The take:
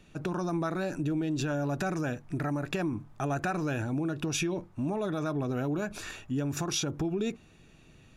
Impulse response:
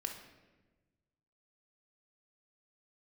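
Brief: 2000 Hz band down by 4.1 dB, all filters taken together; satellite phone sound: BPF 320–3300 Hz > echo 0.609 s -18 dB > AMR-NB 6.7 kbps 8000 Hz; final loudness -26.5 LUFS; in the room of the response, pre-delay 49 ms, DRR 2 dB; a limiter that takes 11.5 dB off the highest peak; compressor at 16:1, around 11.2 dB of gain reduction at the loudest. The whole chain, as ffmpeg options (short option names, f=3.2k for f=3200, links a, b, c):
-filter_complex "[0:a]equalizer=f=2k:t=o:g=-5.5,acompressor=threshold=-38dB:ratio=16,alimiter=level_in=13dB:limit=-24dB:level=0:latency=1,volume=-13dB,asplit=2[a][b];[1:a]atrim=start_sample=2205,adelay=49[c];[b][c]afir=irnorm=-1:irlink=0,volume=-2dB[d];[a][d]amix=inputs=2:normalize=0,highpass=320,lowpass=3.3k,aecho=1:1:609:0.126,volume=22dB" -ar 8000 -c:a libopencore_amrnb -b:a 6700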